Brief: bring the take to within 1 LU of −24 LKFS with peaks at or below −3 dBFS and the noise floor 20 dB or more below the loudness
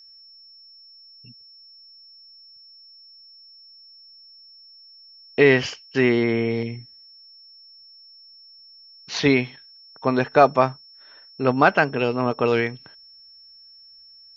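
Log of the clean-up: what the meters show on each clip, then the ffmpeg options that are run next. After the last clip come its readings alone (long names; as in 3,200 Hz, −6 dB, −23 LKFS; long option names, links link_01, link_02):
interfering tone 5,400 Hz; level of the tone −46 dBFS; integrated loudness −21.0 LKFS; sample peak −1.0 dBFS; target loudness −24.0 LKFS
→ -af "bandreject=frequency=5400:width=30"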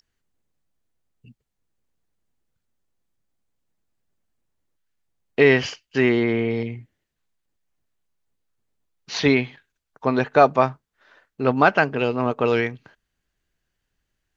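interfering tone none found; integrated loudness −20.5 LKFS; sample peak −1.0 dBFS; target loudness −24.0 LKFS
→ -af "volume=-3.5dB"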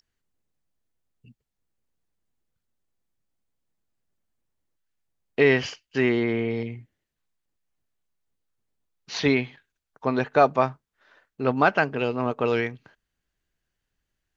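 integrated loudness −24.0 LKFS; sample peak −4.5 dBFS; background noise floor −83 dBFS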